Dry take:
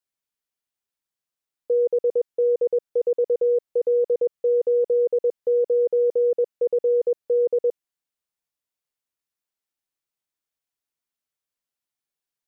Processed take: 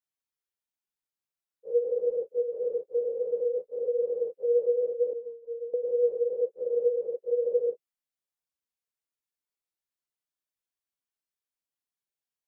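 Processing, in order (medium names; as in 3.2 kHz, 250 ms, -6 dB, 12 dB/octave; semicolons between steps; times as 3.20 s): phase randomisation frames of 100 ms; 5.13–5.74 s: inharmonic resonator 230 Hz, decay 0.35 s, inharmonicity 0.008; trim -6.5 dB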